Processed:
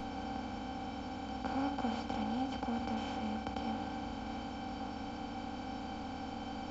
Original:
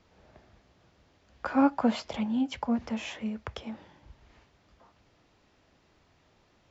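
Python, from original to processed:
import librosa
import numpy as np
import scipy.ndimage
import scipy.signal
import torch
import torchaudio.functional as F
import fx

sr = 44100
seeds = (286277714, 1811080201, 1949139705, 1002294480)

y = fx.bin_compress(x, sr, power=0.2)
y = fx.low_shelf(y, sr, hz=160.0, db=12.0)
y = fx.comb_fb(y, sr, f0_hz=780.0, decay_s=0.18, harmonics='all', damping=0.0, mix_pct=90)
y = F.gain(torch.from_numpy(y), -1.0).numpy()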